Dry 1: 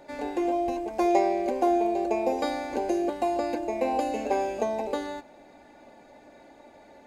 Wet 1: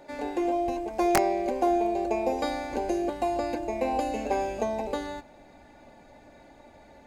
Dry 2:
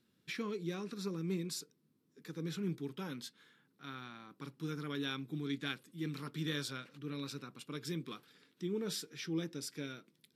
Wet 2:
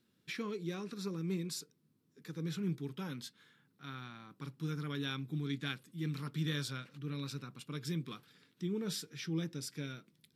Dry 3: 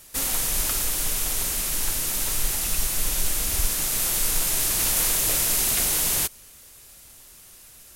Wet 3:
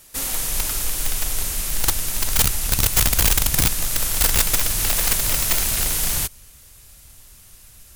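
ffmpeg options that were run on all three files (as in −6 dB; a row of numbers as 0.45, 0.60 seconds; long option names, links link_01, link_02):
-af "asubboost=boost=3:cutoff=170,aeval=exprs='(mod(3.98*val(0)+1,2)-1)/3.98':channel_layout=same"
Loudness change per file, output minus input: −1.0, +1.0, +3.0 LU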